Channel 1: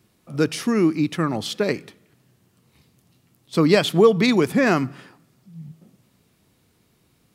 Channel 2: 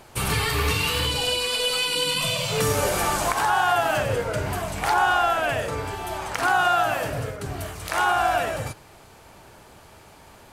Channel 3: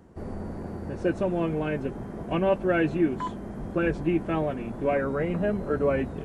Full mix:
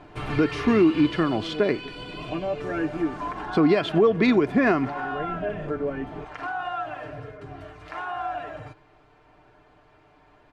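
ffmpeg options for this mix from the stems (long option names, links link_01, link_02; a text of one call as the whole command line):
ffmpeg -i stem1.wav -i stem2.wav -i stem3.wav -filter_complex "[0:a]highshelf=frequency=11000:gain=9,volume=2dB,asplit=2[link_01][link_02];[1:a]volume=-2dB,afade=type=out:start_time=1.12:duration=0.49:silence=0.446684[link_03];[2:a]volume=-0.5dB[link_04];[link_02]apad=whole_len=275567[link_05];[link_04][link_05]sidechaincompress=threshold=-25dB:ratio=8:attack=16:release=495[link_06];[link_03][link_06]amix=inputs=2:normalize=0,aecho=1:1:6.7:0.68,acompressor=threshold=-36dB:ratio=1.5,volume=0dB[link_07];[link_01][link_07]amix=inputs=2:normalize=0,lowpass=2400,aecho=1:1:2.9:0.4,alimiter=limit=-10.5dB:level=0:latency=1:release=262" out.wav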